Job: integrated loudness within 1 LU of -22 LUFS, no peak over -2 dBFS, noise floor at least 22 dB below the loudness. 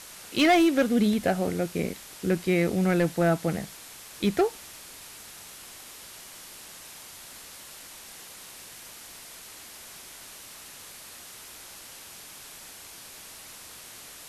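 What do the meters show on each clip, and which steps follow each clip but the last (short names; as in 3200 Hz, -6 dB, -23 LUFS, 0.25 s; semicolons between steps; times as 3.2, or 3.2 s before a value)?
clipped 0.5%; flat tops at -15.5 dBFS; noise floor -46 dBFS; noise floor target -47 dBFS; loudness -25.0 LUFS; peak -15.5 dBFS; loudness target -22.0 LUFS
-> clip repair -15.5 dBFS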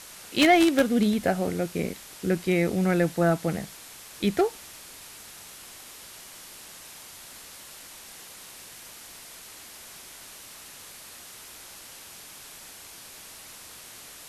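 clipped 0.0%; noise floor -46 dBFS; noise floor target -47 dBFS
-> noise print and reduce 6 dB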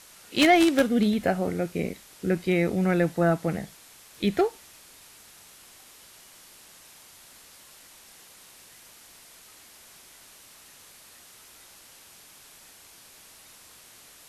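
noise floor -52 dBFS; loudness -24.5 LUFS; peak -6.5 dBFS; loudness target -22.0 LUFS
-> gain +2.5 dB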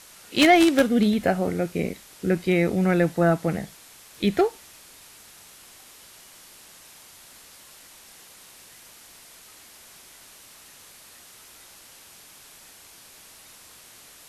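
loudness -22.0 LUFS; peak -4.0 dBFS; noise floor -49 dBFS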